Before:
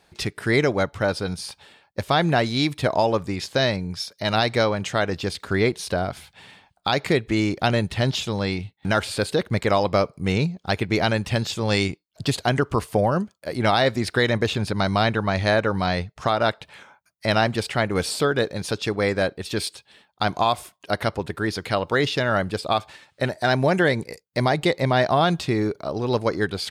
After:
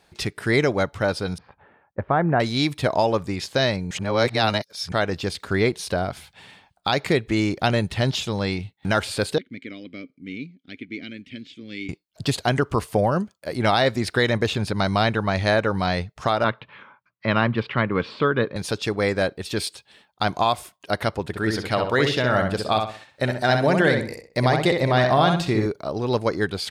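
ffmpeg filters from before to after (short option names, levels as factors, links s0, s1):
-filter_complex "[0:a]asettb=1/sr,asplit=3[s0][s1][s2];[s0]atrim=end=1.384[s3];[s1]atrim=start=1.38:end=2.4,asetpts=PTS-STARTPTS,afade=t=in:d=0.004:c=qsin,afade=t=out:st=1.016:d=0.004:c=qsin,lowpass=f=1700:w=0.5412,lowpass=f=1700:w=1.3066[s4];[s2]atrim=start=2.396[s5];[s3][s4]acrossfade=d=0.004:c1=hsin:c2=qsin[s6];[s6][s5]acrossfade=d=0.004:c1=qsin:c2=hsin,asettb=1/sr,asplit=3[s7][s8][s9];[s7]atrim=end=9.384[s10];[s8]atrim=start=9.38:end=11.89,asetpts=PTS-STARTPTS,afade=t=in:d=0.004:c=qsin,afade=t=out:st=2.506:d=0.004:c=qsin,asplit=3[s11][s12][s13];[s11]bandpass=f=270:t=q:w=8,volume=1[s14];[s12]bandpass=f=2290:t=q:w=8,volume=0.501[s15];[s13]bandpass=f=3010:t=q:w=8,volume=0.355[s16];[s14][s15][s16]amix=inputs=3:normalize=0[s17];[s9]atrim=start=11.886[s18];[s10][s17]acrossfade=d=0.004:c1=hsin:c2=qsin[s19];[s19][s18]acrossfade=d=0.004:c1=qsin:c2=hsin,asettb=1/sr,asplit=3[s20][s21][s22];[s20]atrim=end=16.444[s23];[s21]atrim=start=16.44:end=18.56,asetpts=PTS-STARTPTS,afade=t=in:d=0.004:c=qsin,afade=t=out:st=2.116:d=0.004:c=qsin,highpass=110,equalizer=f=120:t=q:w=4:g=6,equalizer=f=230:t=q:w=4:g=4,equalizer=f=730:t=q:w=4:g=-9,equalizer=f=1100:t=q:w=4:g=8,lowpass=f=3200:w=0.5412,lowpass=f=3200:w=1.3066[s24];[s22]atrim=start=18.556[s25];[s23][s24]acrossfade=d=0.004:c1=hsin:c2=qsin[s26];[s26][s25]acrossfade=d=0.004:c1=qsin:c2=hsin,asettb=1/sr,asplit=3[s27][s28][s29];[s27]atrim=end=21.274[s30];[s28]atrim=start=21.27:end=25.66,asetpts=PTS-STARTPTS,afade=t=in:d=0.004:c=qsin,afade=t=out:st=4.386:d=0.004:c=qsin,asplit=2[s31][s32];[s32]adelay=64,lowpass=f=3600:p=1,volume=0.596,asplit=2[s33][s34];[s34]adelay=64,lowpass=f=3600:p=1,volume=0.35,asplit=2[s35][s36];[s36]adelay=64,lowpass=f=3600:p=1,volume=0.35,asplit=2[s37][s38];[s38]adelay=64,lowpass=f=3600:p=1,volume=0.35[s39];[s31][s33][s35][s37][s39]amix=inputs=5:normalize=0,atrim=end_sample=193599[s40];[s29]atrim=start=25.656[s41];[s30][s40]acrossfade=d=0.004:c1=hsin:c2=qsin[s42];[s42][s41]acrossfade=d=0.004:c1=qsin:c2=hsin,asplit=3[s43][s44][s45];[s43]atrim=end=3.912[s46];[s44]atrim=start=3.908:end=4.922,asetpts=PTS-STARTPTS,areverse[s47];[s45]atrim=start=4.918[s48];[s46][s47]acrossfade=d=0.004:c1=hsin:c2=hsin[s49];[s49][s48]acrossfade=d=0.004:c1=hsin:c2=hsin"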